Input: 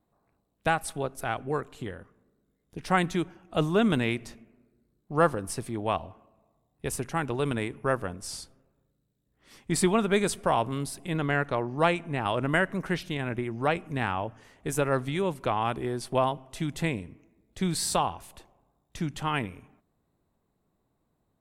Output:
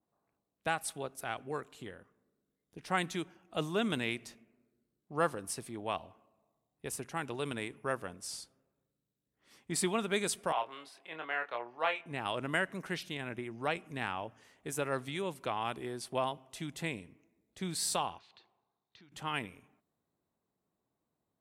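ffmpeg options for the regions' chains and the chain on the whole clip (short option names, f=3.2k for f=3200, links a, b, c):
-filter_complex "[0:a]asettb=1/sr,asplit=3[a][b][c];[a]atrim=end=10.524[d];[b]atrim=start=10.52:end=12.06,asetpts=PTS-STARTPTS,afade=t=in:d=0.004:c=qsin,afade=t=out:st=1.536:d=0.004:c=qsin,acrossover=split=480 3800:gain=0.0708 1 0.0891[e][f][g];[e][f][g]amix=inputs=3:normalize=0,asplit=2[h][i];[i]adelay=25,volume=-6.5dB[j];[h][j]amix=inputs=2:normalize=0,atrim=end_sample=67914[k];[c]atrim=start=12.056[l];[d][k]acrossfade=d=0.004:c1=hsin:c2=qsin[m];[m][l]acrossfade=d=0.004:c1=qsin:c2=hsin,asettb=1/sr,asplit=3[n][o][p];[n]atrim=end=18.184[q];[o]atrim=start=18.18:end=19.12,asetpts=PTS-STARTPTS,afade=t=in:d=0.004:c=qsin,afade=t=out:st=0.936:d=0.004:c=qsin,acompressor=threshold=-49dB:ratio=2.5:attack=3.2:release=140:knee=1:detection=peak,highpass=120,equalizer=f=160:t=q:w=4:g=-9,equalizer=f=270:t=q:w=4:g=-9,equalizer=f=580:t=q:w=4:g=-10,equalizer=f=4.2k:t=q:w=4:g=9,lowpass=f=4.6k:w=0.5412,lowpass=f=4.6k:w=1.3066[r];[p]atrim=start=19.116[s];[q][r]acrossfade=d=0.004:c1=hsin:c2=qsin[t];[t][s]acrossfade=d=0.004:c1=qsin:c2=hsin,highpass=f=170:p=1,adynamicequalizer=threshold=0.0112:dfrequency=2000:dqfactor=0.7:tfrequency=2000:tqfactor=0.7:attack=5:release=100:ratio=0.375:range=3:mode=boostabove:tftype=highshelf,volume=-8dB"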